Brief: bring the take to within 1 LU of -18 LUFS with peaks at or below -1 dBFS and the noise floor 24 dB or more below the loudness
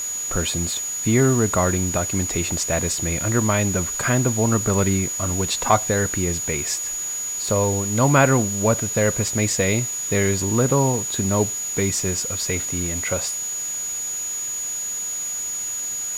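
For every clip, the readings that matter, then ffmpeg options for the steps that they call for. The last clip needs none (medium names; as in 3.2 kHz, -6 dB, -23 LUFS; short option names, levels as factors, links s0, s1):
steady tone 6.8 kHz; tone level -25 dBFS; noise floor -28 dBFS; noise floor target -45 dBFS; loudness -21.0 LUFS; peak level -2.5 dBFS; loudness target -18.0 LUFS
-> -af "bandreject=f=6800:w=30"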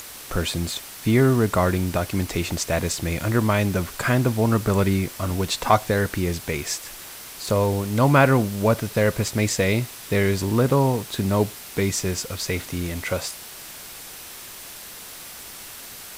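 steady tone not found; noise floor -40 dBFS; noise floor target -47 dBFS
-> -af "afftdn=nr=7:nf=-40"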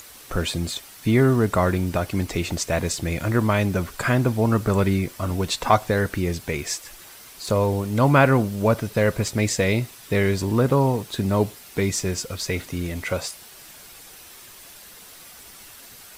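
noise floor -45 dBFS; noise floor target -47 dBFS
-> -af "afftdn=nr=6:nf=-45"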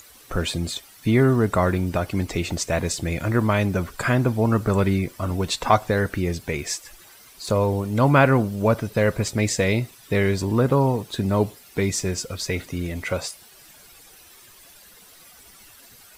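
noise floor -49 dBFS; loudness -22.5 LUFS; peak level -3.0 dBFS; loudness target -18.0 LUFS
-> -af "volume=1.68,alimiter=limit=0.891:level=0:latency=1"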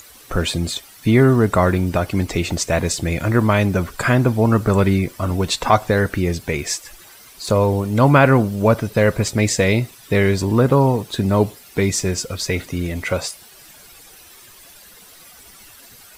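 loudness -18.5 LUFS; peak level -1.0 dBFS; noise floor -45 dBFS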